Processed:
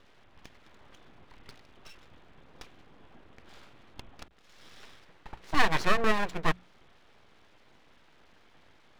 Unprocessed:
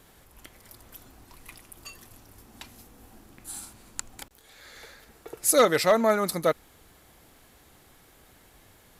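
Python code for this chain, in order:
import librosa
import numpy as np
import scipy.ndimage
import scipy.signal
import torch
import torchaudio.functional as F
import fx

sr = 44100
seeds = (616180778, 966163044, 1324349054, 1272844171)

y = scipy.signal.sosfilt(scipy.signal.ellip(4, 1.0, 40, 3500.0, 'lowpass', fs=sr, output='sos'), x)
y = np.abs(y)
y = fx.hum_notches(y, sr, base_hz=60, count=3)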